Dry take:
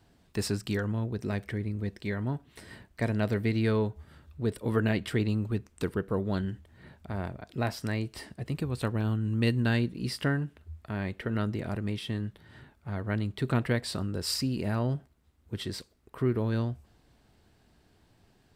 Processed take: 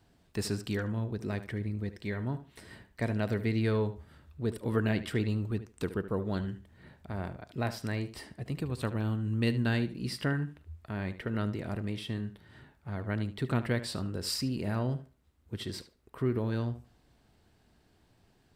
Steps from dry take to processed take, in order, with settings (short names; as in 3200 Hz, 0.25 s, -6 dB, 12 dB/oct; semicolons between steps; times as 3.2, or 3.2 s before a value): tape echo 75 ms, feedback 21%, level -12 dB, low-pass 3800 Hz; gain -2.5 dB